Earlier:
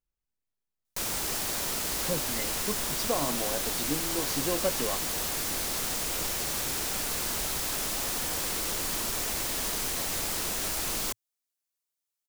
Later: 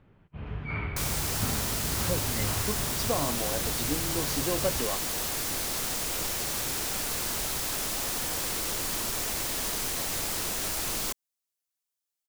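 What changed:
first sound: unmuted; reverb: on; master: add peaking EQ 110 Hz +6.5 dB 0.26 oct

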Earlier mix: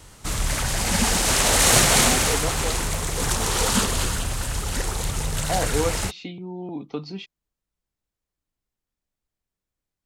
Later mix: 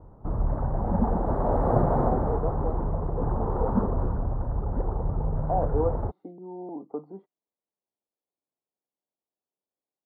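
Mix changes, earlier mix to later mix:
speech: add high-pass 360 Hz 12 dB/octave; master: add inverse Chebyshev low-pass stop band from 2.4 kHz, stop band 50 dB

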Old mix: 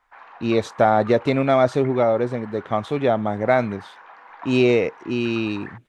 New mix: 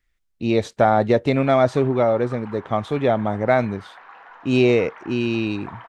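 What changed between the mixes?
background: entry +1.25 s; master: add bass shelf 92 Hz +7 dB

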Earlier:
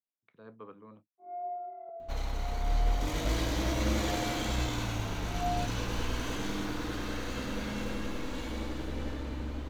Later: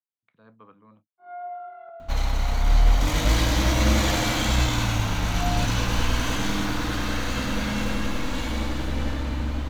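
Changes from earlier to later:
first sound: remove boxcar filter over 30 samples; second sound +10.5 dB; master: add peaking EQ 400 Hz -8.5 dB 0.74 oct

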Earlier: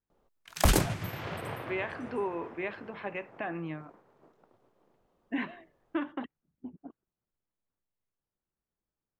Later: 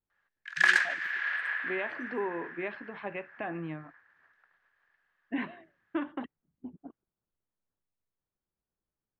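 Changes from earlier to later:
background: add resonant high-pass 1.7 kHz, resonance Q 12; master: add distance through air 120 m

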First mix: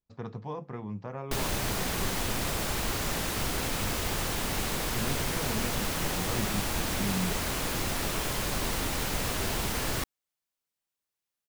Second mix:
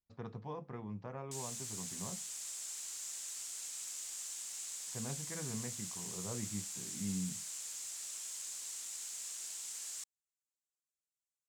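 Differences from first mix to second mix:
speech -6.5 dB; background: add band-pass filter 7.4 kHz, Q 3.9

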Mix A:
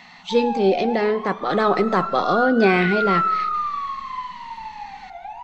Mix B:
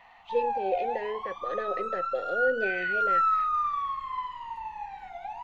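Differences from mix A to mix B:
speech: add vowel filter e; reverb: off

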